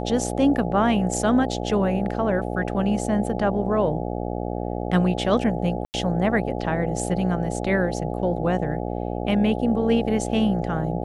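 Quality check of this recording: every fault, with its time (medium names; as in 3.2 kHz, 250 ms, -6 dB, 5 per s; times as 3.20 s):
buzz 60 Hz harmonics 14 -28 dBFS
5.85–5.94 s: dropout 89 ms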